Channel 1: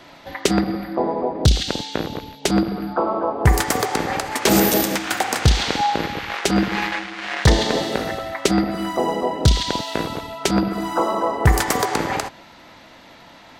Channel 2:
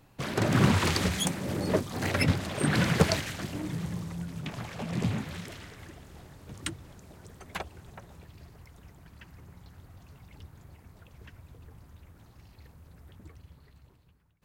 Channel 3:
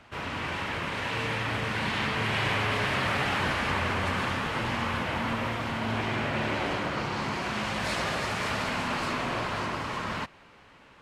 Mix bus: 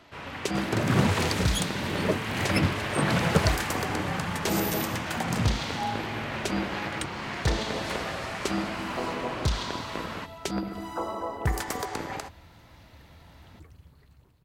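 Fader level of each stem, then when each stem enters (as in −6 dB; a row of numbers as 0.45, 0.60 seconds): −12.0, −0.5, −5.0 decibels; 0.00, 0.35, 0.00 seconds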